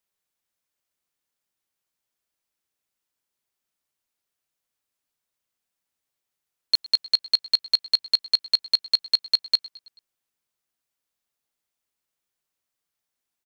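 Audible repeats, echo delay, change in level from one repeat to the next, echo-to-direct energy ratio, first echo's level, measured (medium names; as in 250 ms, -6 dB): 3, 109 ms, -5.0 dB, -19.5 dB, -21.0 dB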